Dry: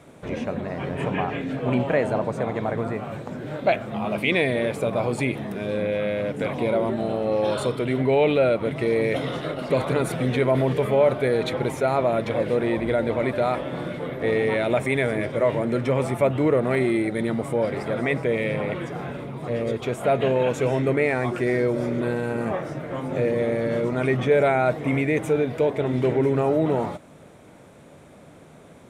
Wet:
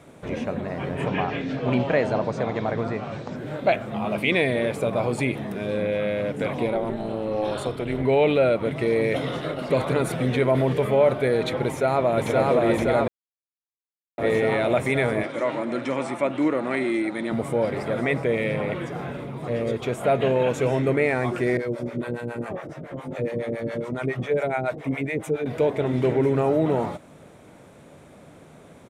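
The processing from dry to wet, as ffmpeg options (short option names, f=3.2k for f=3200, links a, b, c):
-filter_complex "[0:a]asettb=1/sr,asplit=3[a][b][c];[a]atrim=end=1.074[d];[b]atrim=start=1.07:end=3.36,asetpts=PTS-STARTPTS,afade=t=in:d=0.004:c=qsin,afade=t=out:st=2.286:d=0.004:c=qsin,lowpass=f=5.3k:t=q:w=2.3[e];[c]atrim=start=3.356[f];[d][e]acrossfade=d=0.004:c1=hsin:c2=qsin[g];[g][f]acrossfade=d=0.004:c1=qsin:c2=hsin,asplit=3[h][i][j];[h]afade=t=out:st=6.66:d=0.02[k];[i]tremolo=f=220:d=0.71,afade=t=in:st=6.66:d=0.02,afade=t=out:st=8.03:d=0.02[l];[j]afade=t=in:st=8.03:d=0.02[m];[k][l][m]amix=inputs=3:normalize=0,asplit=2[n][o];[o]afade=t=in:st=11.65:d=0.01,afade=t=out:st=12.3:d=0.01,aecho=0:1:520|1040|1560|2080|2600|3120|3640|4160|4680|5200|5720|6240:0.891251|0.713001|0.570401|0.45632|0.365056|0.292045|0.233636|0.186909|0.149527|0.119622|0.0956973|0.0765579[p];[n][p]amix=inputs=2:normalize=0,asettb=1/sr,asplit=3[q][r][s];[q]atrim=end=15.234[t];[r]atrim=start=15.23:end=17.32,asetpts=PTS-STARTPTS,afade=t=in:d=0.004:c=qsin,afade=t=out:st=2.086:d=0.004:c=qsin,highpass=280,equalizer=f=290:t=q:w=4:g=6,equalizer=f=440:t=q:w=4:g=-10,equalizer=f=660:t=q:w=4:g=-4,lowpass=f=8.8k:w=0.5412,lowpass=f=8.8k:w=1.3066[u];[s]atrim=start=17.316[v];[t][u]acrossfade=d=0.004:c1=hsin:c2=qsin[w];[w][v]acrossfade=d=0.004:c1=qsin:c2=hsin,asettb=1/sr,asplit=3[x][y][z];[x]atrim=end=21.574[aa];[y]atrim=start=21.57:end=25.46,asetpts=PTS-STARTPTS,afade=t=in:d=0.004:c=qsin,afade=t=out:st=3.886:d=0.004:c=qsin,acrossover=split=560[ab][ac];[ab]aeval=exprs='val(0)*(1-1/2+1/2*cos(2*PI*7.2*n/s))':c=same[ad];[ac]aeval=exprs='val(0)*(1-1/2-1/2*cos(2*PI*7.2*n/s))':c=same[ae];[ad][ae]amix=inputs=2:normalize=0[af];[z]atrim=start=25.456[ag];[aa][af]acrossfade=d=0.004:c1=hsin:c2=qsin[ah];[ah][ag]acrossfade=d=0.004:c1=qsin:c2=hsin,asplit=3[ai][aj][ak];[ai]atrim=end=13.08,asetpts=PTS-STARTPTS,afade=t=out:st=13.076:d=0.004:c=hsin[al];[aj]atrim=start=13.08:end=14.18,asetpts=PTS-STARTPTS,volume=0[am];[ak]atrim=start=14.18,asetpts=PTS-STARTPTS,afade=t=in:d=0.004:c=hsin[an];[al][am][an]concat=n=3:v=0:a=1"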